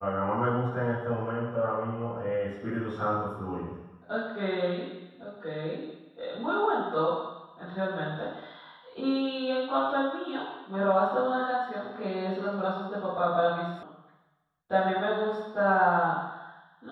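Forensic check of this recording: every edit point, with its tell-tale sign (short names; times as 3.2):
13.83 sound cut off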